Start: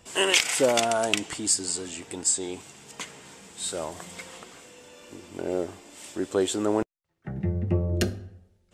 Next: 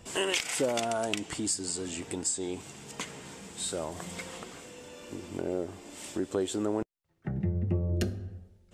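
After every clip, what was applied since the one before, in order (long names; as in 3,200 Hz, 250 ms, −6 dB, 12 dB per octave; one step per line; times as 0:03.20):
low-shelf EQ 430 Hz +6 dB
downward compressor 2 to 1, threshold −33 dBFS, peak gain reduction 10.5 dB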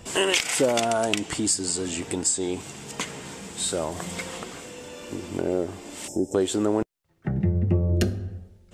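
gain on a spectral selection 0:06.08–0:06.34, 890–5,100 Hz −27 dB
level +7 dB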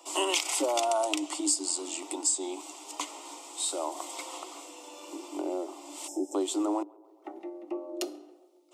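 Chebyshev high-pass with heavy ripple 290 Hz, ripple 6 dB
phaser with its sweep stopped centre 440 Hz, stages 6
tape delay 139 ms, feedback 82%, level −23.5 dB, low-pass 1,200 Hz
level +3 dB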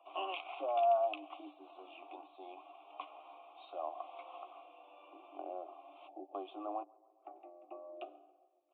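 formant filter a
double-tracking delay 13 ms −11.5 dB
downsampling to 8,000 Hz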